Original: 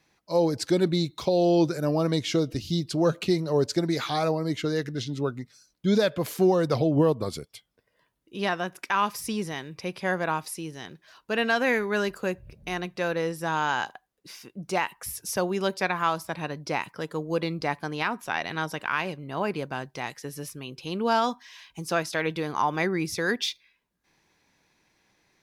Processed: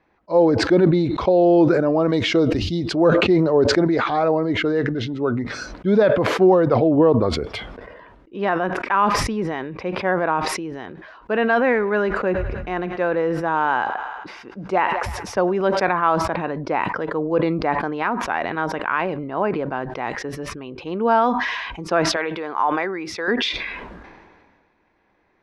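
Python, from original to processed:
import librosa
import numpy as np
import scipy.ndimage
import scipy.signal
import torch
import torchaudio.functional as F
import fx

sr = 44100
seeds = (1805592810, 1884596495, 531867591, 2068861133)

y = fx.high_shelf(x, sr, hz=3400.0, db=9.5, at=(2.1, 2.96))
y = fx.echo_thinned(y, sr, ms=103, feedback_pct=70, hz=420.0, wet_db=-23.5, at=(11.56, 15.87))
y = fx.highpass(y, sr, hz=780.0, slope=6, at=(22.16, 23.28))
y = fx.edit(y, sr, fx.fade_down_up(start_s=5.1, length_s=0.86, db=-9.0, fade_s=0.42, curve='qsin'), tone=tone)
y = scipy.signal.sosfilt(scipy.signal.butter(2, 1500.0, 'lowpass', fs=sr, output='sos'), y)
y = fx.peak_eq(y, sr, hz=140.0, db=-10.0, octaves=0.87)
y = fx.sustainer(y, sr, db_per_s=33.0)
y = y * librosa.db_to_amplitude(7.5)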